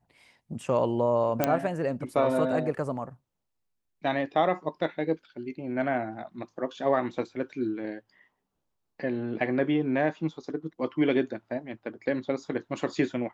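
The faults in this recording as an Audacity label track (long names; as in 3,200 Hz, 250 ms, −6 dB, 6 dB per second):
1.440000	1.440000	click −8 dBFS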